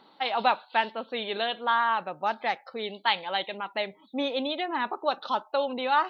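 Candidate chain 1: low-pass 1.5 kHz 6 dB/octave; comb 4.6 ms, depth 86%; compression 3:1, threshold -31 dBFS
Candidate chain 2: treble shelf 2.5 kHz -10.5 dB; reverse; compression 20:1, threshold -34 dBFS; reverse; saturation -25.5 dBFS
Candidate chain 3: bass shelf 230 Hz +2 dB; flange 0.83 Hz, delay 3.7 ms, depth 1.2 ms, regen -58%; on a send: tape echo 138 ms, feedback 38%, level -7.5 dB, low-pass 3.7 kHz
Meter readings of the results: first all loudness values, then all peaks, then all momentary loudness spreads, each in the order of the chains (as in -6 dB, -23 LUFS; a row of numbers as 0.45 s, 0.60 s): -34.5 LUFS, -40.0 LUFS, -32.5 LUFS; -18.5 dBFS, -26.5 dBFS, -13.0 dBFS; 4 LU, 3 LU, 6 LU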